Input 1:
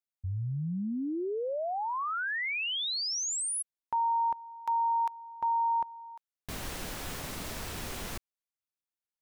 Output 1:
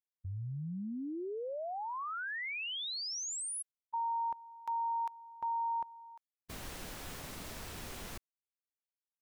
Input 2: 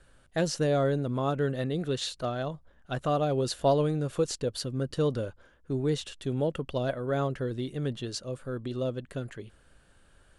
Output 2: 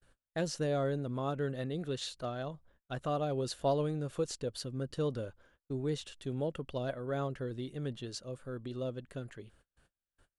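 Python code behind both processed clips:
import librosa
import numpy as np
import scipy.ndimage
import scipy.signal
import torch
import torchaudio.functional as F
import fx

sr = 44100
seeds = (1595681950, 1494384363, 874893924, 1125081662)

y = fx.gate_hold(x, sr, open_db=-48.0, close_db=-56.0, hold_ms=55.0, range_db=-33, attack_ms=13.0, release_ms=54.0)
y = y * librosa.db_to_amplitude(-6.5)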